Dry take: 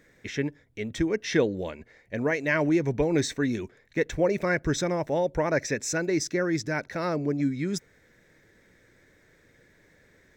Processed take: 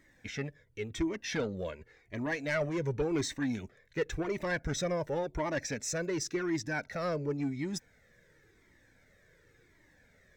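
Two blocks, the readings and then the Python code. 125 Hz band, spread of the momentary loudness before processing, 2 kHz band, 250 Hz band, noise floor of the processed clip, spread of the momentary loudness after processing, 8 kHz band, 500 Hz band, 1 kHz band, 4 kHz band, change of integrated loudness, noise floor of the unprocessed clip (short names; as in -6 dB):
-6.0 dB, 10 LU, -6.5 dB, -7.5 dB, -66 dBFS, 9 LU, -4.5 dB, -7.5 dB, -6.5 dB, -4.5 dB, -7.0 dB, -61 dBFS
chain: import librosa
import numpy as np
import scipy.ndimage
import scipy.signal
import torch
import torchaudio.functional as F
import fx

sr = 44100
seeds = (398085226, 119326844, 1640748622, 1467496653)

y = 10.0 ** (-20.0 / 20.0) * np.tanh(x / 10.0 ** (-20.0 / 20.0))
y = fx.comb_cascade(y, sr, direction='falling', hz=0.92)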